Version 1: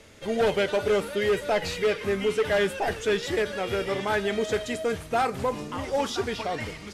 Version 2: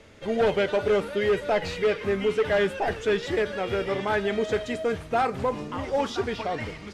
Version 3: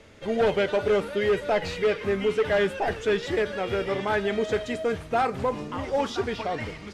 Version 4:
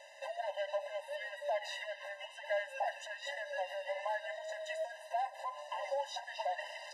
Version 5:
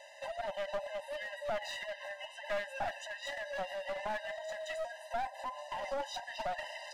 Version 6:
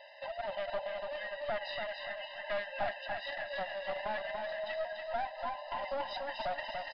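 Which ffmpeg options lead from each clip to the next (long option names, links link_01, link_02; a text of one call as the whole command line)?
ffmpeg -i in.wav -af "aemphasis=mode=reproduction:type=50kf,volume=1dB" out.wav
ffmpeg -i in.wav -af anull out.wav
ffmpeg -i in.wav -af "acompressor=threshold=-33dB:ratio=12,afftfilt=real='re*eq(mod(floor(b*sr/1024/520),2),1)':imag='im*eq(mod(floor(b*sr/1024/520),2),1)':win_size=1024:overlap=0.75,volume=2.5dB" out.wav
ffmpeg -i in.wav -af "aeval=exprs='clip(val(0),-1,0.0119)':channel_layout=same,volume=1.5dB" out.wav
ffmpeg -i in.wav -filter_complex "[0:a]asplit=2[link_01][link_02];[link_02]aecho=0:1:288|576|864|1152|1440:0.562|0.231|0.0945|0.0388|0.0159[link_03];[link_01][link_03]amix=inputs=2:normalize=0,aresample=11025,aresample=44100" out.wav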